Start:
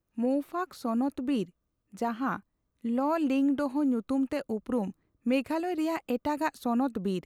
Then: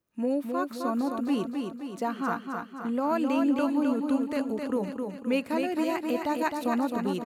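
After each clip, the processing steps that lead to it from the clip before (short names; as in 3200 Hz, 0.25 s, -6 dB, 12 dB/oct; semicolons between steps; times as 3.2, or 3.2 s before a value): HPF 200 Hz 6 dB/oct; notch 770 Hz, Q 12; on a send: feedback echo 0.262 s, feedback 54%, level -5 dB; on the sum: gain +1.5 dB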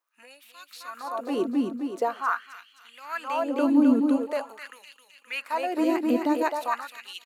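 LFO high-pass sine 0.45 Hz 250–3100 Hz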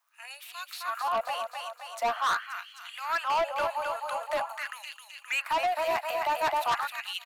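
steep high-pass 630 Hz 72 dB/oct; dynamic EQ 6600 Hz, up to -7 dB, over -52 dBFS, Q 0.73; soft clip -31 dBFS, distortion -7 dB; gain +8 dB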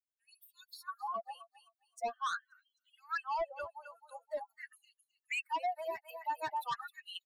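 per-bin expansion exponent 3; gain -4 dB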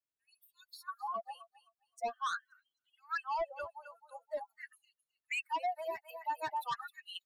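mismatched tape noise reduction decoder only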